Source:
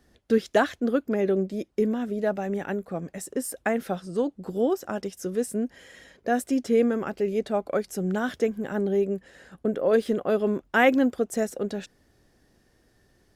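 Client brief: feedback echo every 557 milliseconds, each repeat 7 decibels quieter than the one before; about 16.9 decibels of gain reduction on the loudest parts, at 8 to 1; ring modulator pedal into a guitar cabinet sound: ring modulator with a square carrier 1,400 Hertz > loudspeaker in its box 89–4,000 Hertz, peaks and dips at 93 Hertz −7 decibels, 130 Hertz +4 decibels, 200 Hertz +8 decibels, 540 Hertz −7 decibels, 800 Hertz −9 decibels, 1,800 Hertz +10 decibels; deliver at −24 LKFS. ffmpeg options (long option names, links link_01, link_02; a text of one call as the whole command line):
ffmpeg -i in.wav -af "acompressor=threshold=-33dB:ratio=8,aecho=1:1:557|1114|1671|2228|2785:0.447|0.201|0.0905|0.0407|0.0183,aeval=exprs='val(0)*sgn(sin(2*PI*1400*n/s))':channel_layout=same,highpass=89,equalizer=frequency=93:width_type=q:width=4:gain=-7,equalizer=frequency=130:width_type=q:width=4:gain=4,equalizer=frequency=200:width_type=q:width=4:gain=8,equalizer=frequency=540:width_type=q:width=4:gain=-7,equalizer=frequency=800:width_type=q:width=4:gain=-9,equalizer=frequency=1800:width_type=q:width=4:gain=10,lowpass=frequency=4000:width=0.5412,lowpass=frequency=4000:width=1.3066,volume=7dB" out.wav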